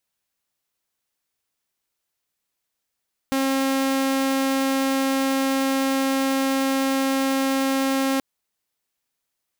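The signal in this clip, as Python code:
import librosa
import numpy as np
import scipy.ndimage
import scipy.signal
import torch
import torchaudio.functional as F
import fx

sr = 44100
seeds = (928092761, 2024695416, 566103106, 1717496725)

y = 10.0 ** (-17.0 / 20.0) * (2.0 * np.mod(269.0 * (np.arange(round(4.88 * sr)) / sr), 1.0) - 1.0)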